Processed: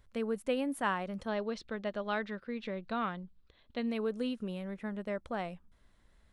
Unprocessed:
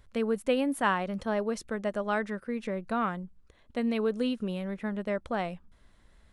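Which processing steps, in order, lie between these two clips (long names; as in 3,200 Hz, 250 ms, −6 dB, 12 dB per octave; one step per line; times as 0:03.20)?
0:01.28–0:03.87: low-pass with resonance 3,900 Hz, resonance Q 2.7
level −5.5 dB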